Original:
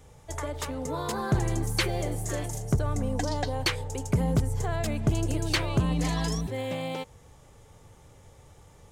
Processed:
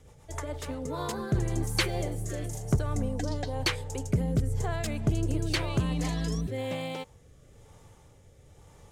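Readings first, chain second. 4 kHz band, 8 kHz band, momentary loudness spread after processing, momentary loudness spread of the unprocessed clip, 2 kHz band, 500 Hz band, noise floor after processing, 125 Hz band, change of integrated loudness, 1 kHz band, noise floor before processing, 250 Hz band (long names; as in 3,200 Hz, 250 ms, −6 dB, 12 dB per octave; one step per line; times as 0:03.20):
−1.5 dB, −3.0 dB, 8 LU, 7 LU, −2.0 dB, −2.0 dB, −56 dBFS, −1.5 dB, −2.0 dB, −4.0 dB, −54 dBFS, −1.5 dB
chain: rotating-speaker cabinet horn 7.5 Hz, later 1 Hz, at 0:00.26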